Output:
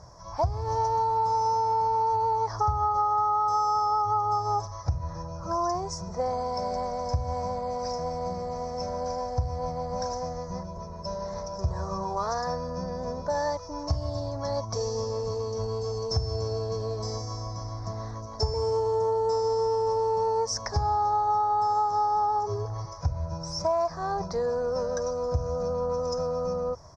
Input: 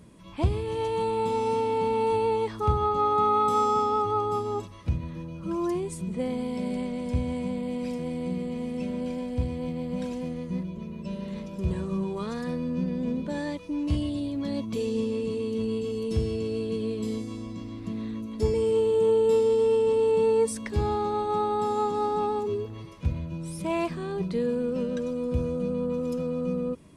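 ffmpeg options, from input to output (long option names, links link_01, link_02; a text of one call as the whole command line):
ffmpeg -i in.wav -af "firequalizer=gain_entry='entry(110,0);entry(220,-23);entry(690,8);entry(1800,-6);entry(2800,-30);entry(5500,14);entry(8900,-28)':delay=0.05:min_phase=1,acompressor=threshold=-30dB:ratio=8,volume=7.5dB" -ar 44100 -c:a mp2 -b:a 96k out.mp2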